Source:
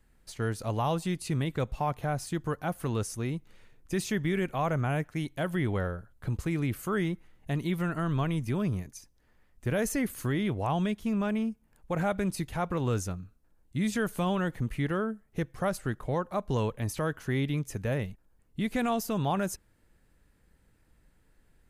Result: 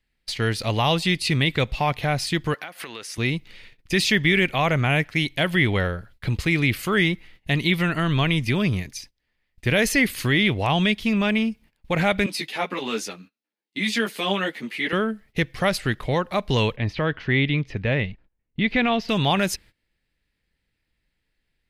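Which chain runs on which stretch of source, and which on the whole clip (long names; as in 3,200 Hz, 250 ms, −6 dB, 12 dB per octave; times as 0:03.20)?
0:02.54–0:03.18: high-pass filter 330 Hz + parametric band 1,600 Hz +6 dB 1.3 octaves + downward compressor 10 to 1, threshold −41 dBFS
0:12.26–0:14.93: high-pass filter 230 Hz 24 dB per octave + string-ensemble chorus
0:16.76–0:19.09: high-frequency loss of the air 240 metres + one half of a high-frequency compander decoder only
whole clip: noise gate −54 dBFS, range −19 dB; flat-topped bell 3,100 Hz +12.5 dB; level +7 dB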